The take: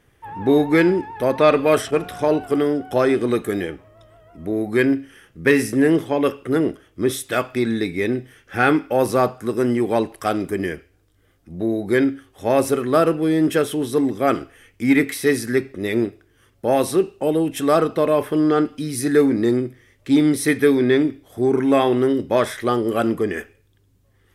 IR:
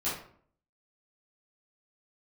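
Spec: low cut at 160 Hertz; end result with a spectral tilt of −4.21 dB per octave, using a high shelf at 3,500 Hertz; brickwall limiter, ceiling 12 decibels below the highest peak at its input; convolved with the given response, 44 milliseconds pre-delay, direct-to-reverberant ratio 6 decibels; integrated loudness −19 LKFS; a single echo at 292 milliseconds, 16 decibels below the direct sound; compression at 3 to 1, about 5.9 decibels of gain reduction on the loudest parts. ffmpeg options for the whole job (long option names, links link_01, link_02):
-filter_complex "[0:a]highpass=160,highshelf=frequency=3500:gain=-8.5,acompressor=threshold=-19dB:ratio=3,alimiter=limit=-19.5dB:level=0:latency=1,aecho=1:1:292:0.158,asplit=2[link_01][link_02];[1:a]atrim=start_sample=2205,adelay=44[link_03];[link_02][link_03]afir=irnorm=-1:irlink=0,volume=-12.5dB[link_04];[link_01][link_04]amix=inputs=2:normalize=0,volume=8.5dB"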